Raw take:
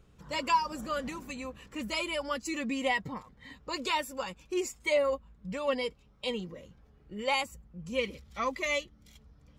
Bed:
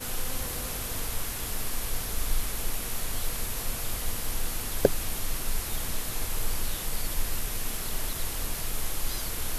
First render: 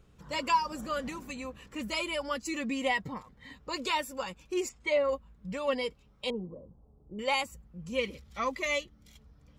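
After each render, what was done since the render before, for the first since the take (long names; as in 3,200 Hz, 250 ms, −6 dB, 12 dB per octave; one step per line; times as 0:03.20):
0:04.69–0:05.09: high-frequency loss of the air 110 metres
0:06.30–0:07.19: inverse Chebyshev low-pass filter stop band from 1,900 Hz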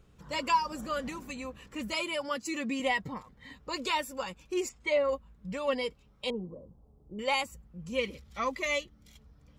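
0:01.92–0:02.80: high-pass filter 89 Hz 24 dB per octave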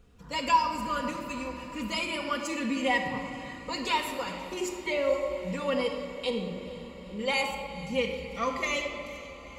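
feedback delay with all-pass diffusion 474 ms, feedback 71%, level −16 dB
rectangular room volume 3,100 cubic metres, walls mixed, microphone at 1.8 metres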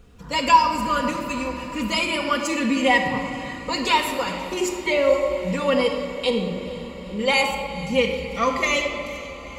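level +8.5 dB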